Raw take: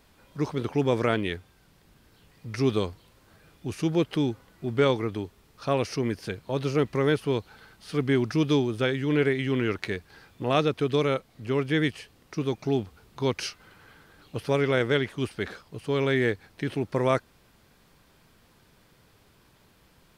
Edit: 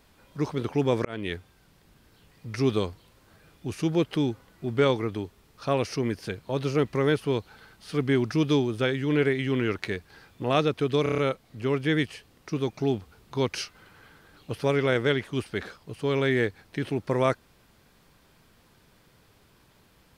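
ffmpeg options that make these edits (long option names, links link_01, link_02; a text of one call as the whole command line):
ffmpeg -i in.wav -filter_complex "[0:a]asplit=7[link_01][link_02][link_03][link_04][link_05][link_06][link_07];[link_01]atrim=end=1.05,asetpts=PTS-STARTPTS,afade=type=out:start_time=1.046:duration=0.004:curve=hsin[link_08];[link_02]atrim=start=1.05:end=11.062,asetpts=PTS-STARTPTS,afade=type=in:duration=0.28[link_09];[link_03]atrim=start=11.028:end=11.062[link_10];[link_04]atrim=start=11.028:end=11.062[link_11];[link_05]atrim=start=11.028:end=11.062[link_12];[link_06]atrim=start=11.028:end=11.062[link_13];[link_07]atrim=start=11.028[link_14];[link_08][link_09]concat=n=2:v=0:a=1[link_15];[link_15][link_10]acrossfade=duration=0.004:curve1=hsin:curve2=hsin[link_16];[link_16][link_11]acrossfade=duration=0.004:curve1=hsin:curve2=hsin[link_17];[link_17][link_12]acrossfade=duration=0.004:curve1=hsin:curve2=hsin[link_18];[link_18][link_13]acrossfade=duration=0.004:curve1=hsin:curve2=hsin[link_19];[link_19][link_14]acrossfade=duration=0.004:curve1=hsin:curve2=hsin" out.wav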